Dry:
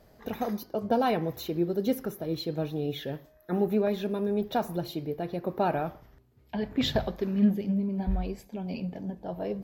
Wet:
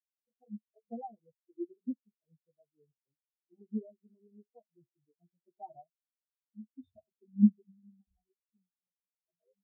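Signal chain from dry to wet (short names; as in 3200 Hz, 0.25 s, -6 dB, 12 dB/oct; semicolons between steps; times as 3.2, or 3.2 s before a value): chorus voices 4, 0.64 Hz, delay 11 ms, depth 3.2 ms; 8.7–9.28 wrapped overs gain 36 dB; spectral expander 4:1; gain +4 dB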